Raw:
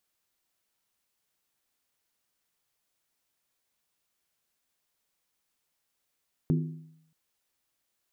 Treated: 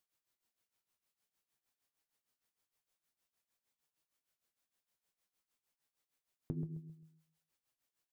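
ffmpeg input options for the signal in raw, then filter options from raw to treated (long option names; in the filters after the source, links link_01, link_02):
-f lavfi -i "aevalsrc='0.0944*pow(10,-3*t/0.76)*sin(2*PI*159*t)+0.0501*pow(10,-3*t/0.602)*sin(2*PI*253.4*t)+0.0266*pow(10,-3*t/0.52)*sin(2*PI*339.6*t)+0.0141*pow(10,-3*t/0.502)*sin(2*PI*365.1*t)+0.0075*pow(10,-3*t/0.467)*sin(2*PI*421.8*t)':duration=0.63:sample_rate=44100"
-filter_complex "[0:a]tremolo=f=6.5:d=0.81,flanger=delay=6.2:depth=5.4:regen=67:speed=0.5:shape=triangular,asplit=2[link_01][link_02];[link_02]adelay=132,lowpass=frequency=1100:poles=1,volume=-9dB,asplit=2[link_03][link_04];[link_04]adelay=132,lowpass=frequency=1100:poles=1,volume=0.33,asplit=2[link_05][link_06];[link_06]adelay=132,lowpass=frequency=1100:poles=1,volume=0.33,asplit=2[link_07][link_08];[link_08]adelay=132,lowpass=frequency=1100:poles=1,volume=0.33[link_09];[link_03][link_05][link_07][link_09]amix=inputs=4:normalize=0[link_10];[link_01][link_10]amix=inputs=2:normalize=0"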